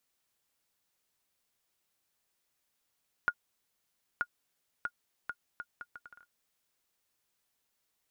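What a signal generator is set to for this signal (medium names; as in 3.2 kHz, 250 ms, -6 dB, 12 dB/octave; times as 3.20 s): bouncing ball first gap 0.93 s, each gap 0.69, 1.43 kHz, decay 59 ms -16.5 dBFS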